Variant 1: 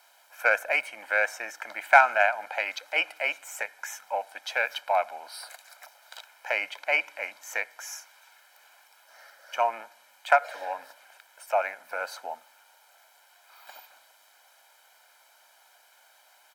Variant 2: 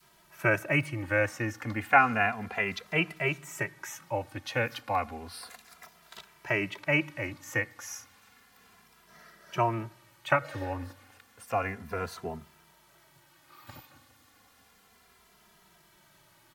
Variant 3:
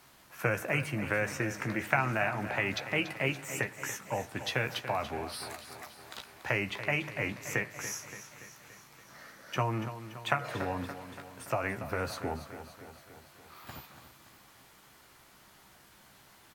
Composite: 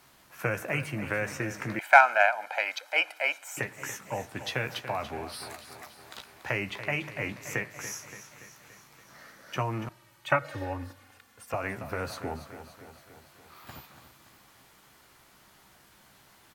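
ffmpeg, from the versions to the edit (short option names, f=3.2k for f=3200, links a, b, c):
-filter_complex "[2:a]asplit=3[a][b][c];[a]atrim=end=1.792[d];[0:a]atrim=start=1.788:end=3.572[e];[b]atrim=start=3.568:end=9.892[f];[1:a]atrim=start=9.888:end=11.542[g];[c]atrim=start=11.538[h];[d][e]acrossfade=d=0.004:c1=hsin:c2=hsin[i];[i][f]acrossfade=d=0.004:c1=hsin:c2=hsin[j];[j][g]acrossfade=d=0.004:c1=hsin:c2=hsin[k];[k][h]acrossfade=d=0.004:c1=hsin:c2=hsin"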